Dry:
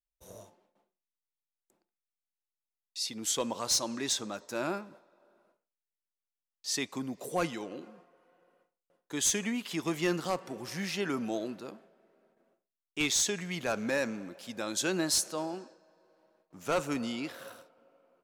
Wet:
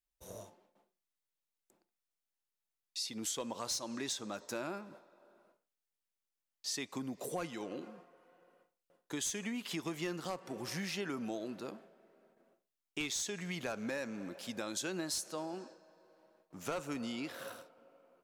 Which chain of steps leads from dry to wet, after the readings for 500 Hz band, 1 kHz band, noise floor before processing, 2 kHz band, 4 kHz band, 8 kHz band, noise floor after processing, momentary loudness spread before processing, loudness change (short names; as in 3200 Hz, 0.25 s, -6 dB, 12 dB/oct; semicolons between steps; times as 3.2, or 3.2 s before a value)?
-7.0 dB, -7.0 dB, under -85 dBFS, -7.0 dB, -7.0 dB, -8.5 dB, under -85 dBFS, 15 LU, -7.5 dB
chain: compressor 4:1, threshold -38 dBFS, peak gain reduction 12 dB; gain +1 dB